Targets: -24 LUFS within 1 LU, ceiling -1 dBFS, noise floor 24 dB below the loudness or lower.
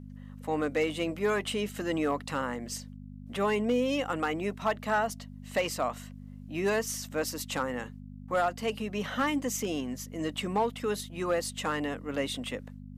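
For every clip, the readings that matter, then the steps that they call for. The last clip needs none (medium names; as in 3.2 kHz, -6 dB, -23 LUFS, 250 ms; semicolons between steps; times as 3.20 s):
clipped samples 0.3%; clipping level -19.5 dBFS; hum 50 Hz; highest harmonic 250 Hz; hum level -42 dBFS; loudness -31.5 LUFS; peak level -19.5 dBFS; loudness target -24.0 LUFS
-> clip repair -19.5 dBFS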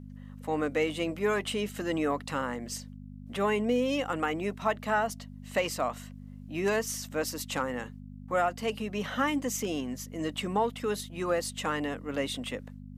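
clipped samples 0.0%; hum 50 Hz; highest harmonic 250 Hz; hum level -42 dBFS
-> de-hum 50 Hz, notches 5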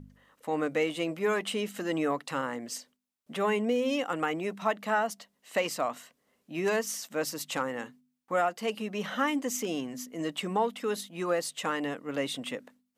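hum not found; loudness -31.5 LUFS; peak level -15.0 dBFS; loudness target -24.0 LUFS
-> trim +7.5 dB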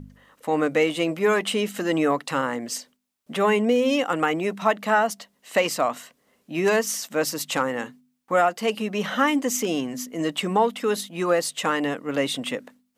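loudness -24.0 LUFS; peak level -7.5 dBFS; noise floor -70 dBFS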